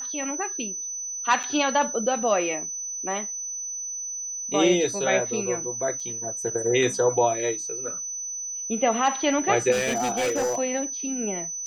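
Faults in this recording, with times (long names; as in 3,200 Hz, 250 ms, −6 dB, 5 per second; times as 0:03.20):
whistle 6,000 Hz −30 dBFS
0:01.43–0:01.44: drop-out 6.5 ms
0:06.00: drop-out 3.9 ms
0:09.71–0:10.59: clipping −21 dBFS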